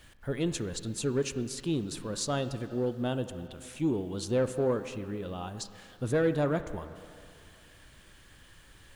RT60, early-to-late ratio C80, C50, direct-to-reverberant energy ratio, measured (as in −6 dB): 2.4 s, 12.0 dB, 11.5 dB, 10.5 dB